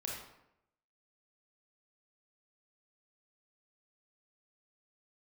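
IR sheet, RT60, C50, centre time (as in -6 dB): 0.80 s, 1.0 dB, 55 ms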